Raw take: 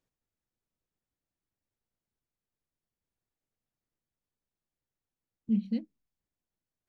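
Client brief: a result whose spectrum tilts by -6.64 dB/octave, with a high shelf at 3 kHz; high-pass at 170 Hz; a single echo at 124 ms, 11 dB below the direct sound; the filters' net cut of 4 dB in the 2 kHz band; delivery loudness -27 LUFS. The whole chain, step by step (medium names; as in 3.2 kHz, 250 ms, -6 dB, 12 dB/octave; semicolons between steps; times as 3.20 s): high-pass 170 Hz; peaking EQ 2 kHz -6.5 dB; treble shelf 3 kHz +4.5 dB; delay 124 ms -11 dB; trim +6.5 dB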